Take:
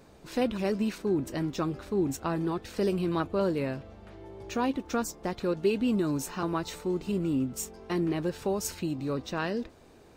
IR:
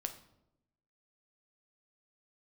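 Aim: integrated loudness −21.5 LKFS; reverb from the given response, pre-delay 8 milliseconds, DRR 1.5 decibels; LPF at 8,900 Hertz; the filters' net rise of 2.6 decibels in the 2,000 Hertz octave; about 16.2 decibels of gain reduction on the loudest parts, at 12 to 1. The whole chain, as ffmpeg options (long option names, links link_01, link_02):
-filter_complex "[0:a]lowpass=8900,equalizer=frequency=2000:width_type=o:gain=3.5,acompressor=threshold=-38dB:ratio=12,asplit=2[link_01][link_02];[1:a]atrim=start_sample=2205,adelay=8[link_03];[link_02][link_03]afir=irnorm=-1:irlink=0,volume=-0.5dB[link_04];[link_01][link_04]amix=inputs=2:normalize=0,volume=19dB"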